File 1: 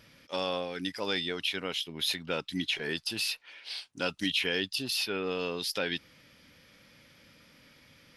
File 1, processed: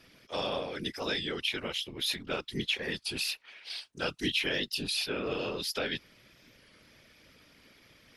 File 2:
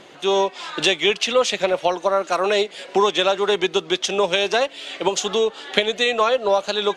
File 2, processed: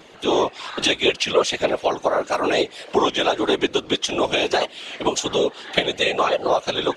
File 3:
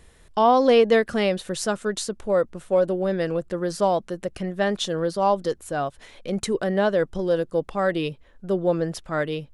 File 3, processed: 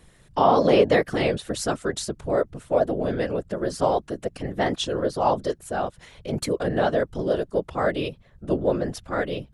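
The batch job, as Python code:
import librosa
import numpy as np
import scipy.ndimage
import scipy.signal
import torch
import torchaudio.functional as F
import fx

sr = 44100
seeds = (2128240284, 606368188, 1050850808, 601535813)

y = fx.whisperise(x, sr, seeds[0])
y = fx.record_warp(y, sr, rpm=33.33, depth_cents=100.0)
y = y * 10.0 ** (-1.0 / 20.0)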